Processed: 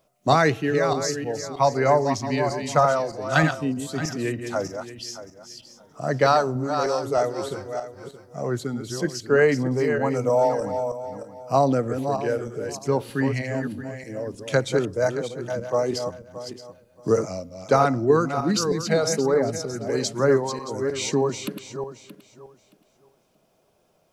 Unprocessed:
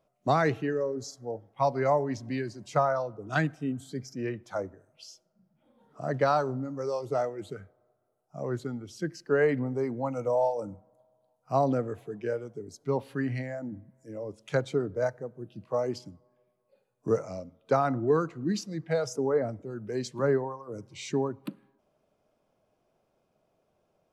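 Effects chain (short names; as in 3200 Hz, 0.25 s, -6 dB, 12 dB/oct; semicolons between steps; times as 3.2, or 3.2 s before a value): regenerating reverse delay 0.312 s, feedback 44%, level -7 dB; high shelf 2900 Hz +9.5 dB; gain +5.5 dB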